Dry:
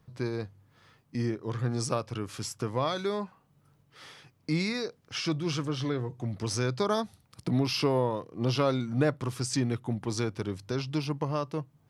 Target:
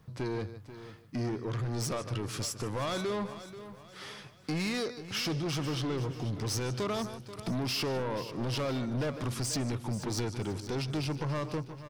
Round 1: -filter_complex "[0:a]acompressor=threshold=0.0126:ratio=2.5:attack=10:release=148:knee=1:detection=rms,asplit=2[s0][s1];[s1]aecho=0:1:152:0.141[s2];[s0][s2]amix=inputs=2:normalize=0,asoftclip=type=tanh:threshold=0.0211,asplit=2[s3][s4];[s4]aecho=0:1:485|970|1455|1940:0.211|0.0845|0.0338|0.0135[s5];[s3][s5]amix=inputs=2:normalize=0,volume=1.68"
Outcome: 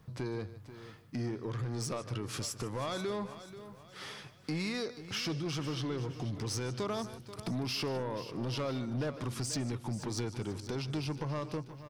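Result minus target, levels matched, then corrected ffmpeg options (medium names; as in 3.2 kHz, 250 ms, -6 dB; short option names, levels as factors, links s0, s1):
compression: peak gain reduction +6 dB
-filter_complex "[0:a]acompressor=threshold=0.0398:ratio=2.5:attack=10:release=148:knee=1:detection=rms,asplit=2[s0][s1];[s1]aecho=0:1:152:0.141[s2];[s0][s2]amix=inputs=2:normalize=0,asoftclip=type=tanh:threshold=0.0211,asplit=2[s3][s4];[s4]aecho=0:1:485|970|1455|1940:0.211|0.0845|0.0338|0.0135[s5];[s3][s5]amix=inputs=2:normalize=0,volume=1.68"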